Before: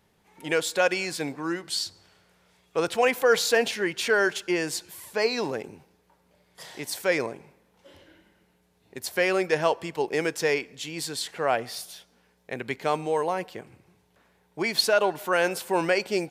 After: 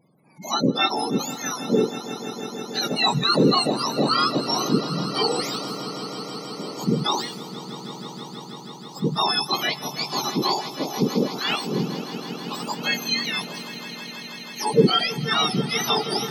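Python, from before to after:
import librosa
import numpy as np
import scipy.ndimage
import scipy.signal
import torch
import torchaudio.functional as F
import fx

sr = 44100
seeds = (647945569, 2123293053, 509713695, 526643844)

y = fx.octave_mirror(x, sr, pivot_hz=1400.0)
y = fx.spec_gate(y, sr, threshold_db=-20, keep='strong')
y = fx.echo_swell(y, sr, ms=161, loudest=5, wet_db=-17)
y = F.gain(torch.from_numpy(y), 4.5).numpy()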